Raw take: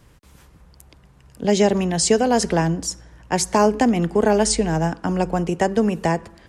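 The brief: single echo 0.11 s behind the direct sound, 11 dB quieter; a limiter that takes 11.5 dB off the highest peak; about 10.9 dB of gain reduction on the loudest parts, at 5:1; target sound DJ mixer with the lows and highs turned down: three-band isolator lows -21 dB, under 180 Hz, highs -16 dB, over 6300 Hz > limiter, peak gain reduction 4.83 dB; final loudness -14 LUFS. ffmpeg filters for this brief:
-filter_complex "[0:a]acompressor=threshold=-24dB:ratio=5,alimiter=limit=-22dB:level=0:latency=1,acrossover=split=180 6300:gain=0.0891 1 0.158[a][b][c];[a][b][c]amix=inputs=3:normalize=0,aecho=1:1:110:0.282,volume=21dB,alimiter=limit=-4.5dB:level=0:latency=1"

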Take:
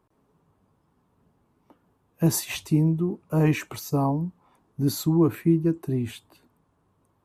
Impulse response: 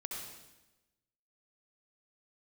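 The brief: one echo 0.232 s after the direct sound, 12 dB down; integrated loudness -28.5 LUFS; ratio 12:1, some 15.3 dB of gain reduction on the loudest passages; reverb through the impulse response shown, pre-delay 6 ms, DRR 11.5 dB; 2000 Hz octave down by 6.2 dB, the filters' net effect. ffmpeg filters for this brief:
-filter_complex "[0:a]equalizer=f=2k:t=o:g=-8,acompressor=threshold=-31dB:ratio=12,aecho=1:1:232:0.251,asplit=2[a][b];[1:a]atrim=start_sample=2205,adelay=6[c];[b][c]afir=irnorm=-1:irlink=0,volume=-11.5dB[d];[a][d]amix=inputs=2:normalize=0,volume=7.5dB"

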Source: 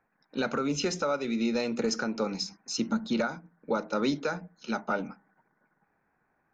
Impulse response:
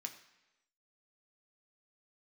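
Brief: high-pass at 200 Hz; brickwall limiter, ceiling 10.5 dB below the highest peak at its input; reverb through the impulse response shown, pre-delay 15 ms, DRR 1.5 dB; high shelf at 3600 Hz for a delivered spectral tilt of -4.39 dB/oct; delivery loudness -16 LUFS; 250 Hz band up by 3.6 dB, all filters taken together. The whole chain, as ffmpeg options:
-filter_complex "[0:a]highpass=200,equalizer=f=250:t=o:g=6,highshelf=f=3.6k:g=-4,alimiter=level_in=0.5dB:limit=-24dB:level=0:latency=1,volume=-0.5dB,asplit=2[a][b];[1:a]atrim=start_sample=2205,adelay=15[c];[b][c]afir=irnorm=-1:irlink=0,volume=1.5dB[d];[a][d]amix=inputs=2:normalize=0,volume=16.5dB"

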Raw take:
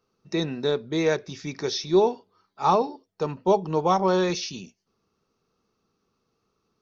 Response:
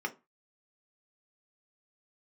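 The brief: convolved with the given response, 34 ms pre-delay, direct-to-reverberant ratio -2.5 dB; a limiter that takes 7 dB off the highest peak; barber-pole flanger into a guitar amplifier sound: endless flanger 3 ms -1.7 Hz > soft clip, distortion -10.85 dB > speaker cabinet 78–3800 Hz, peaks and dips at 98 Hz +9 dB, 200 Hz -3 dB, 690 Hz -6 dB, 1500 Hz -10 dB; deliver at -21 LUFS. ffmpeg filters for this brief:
-filter_complex "[0:a]alimiter=limit=-16dB:level=0:latency=1,asplit=2[a][b];[1:a]atrim=start_sample=2205,adelay=34[c];[b][c]afir=irnorm=-1:irlink=0,volume=-2dB[d];[a][d]amix=inputs=2:normalize=0,asplit=2[e][f];[f]adelay=3,afreqshift=-1.7[g];[e][g]amix=inputs=2:normalize=1,asoftclip=threshold=-22dB,highpass=78,equalizer=f=98:t=q:w=4:g=9,equalizer=f=200:t=q:w=4:g=-3,equalizer=f=690:t=q:w=4:g=-6,equalizer=f=1.5k:t=q:w=4:g=-10,lowpass=f=3.8k:w=0.5412,lowpass=f=3.8k:w=1.3066,volume=10.5dB"

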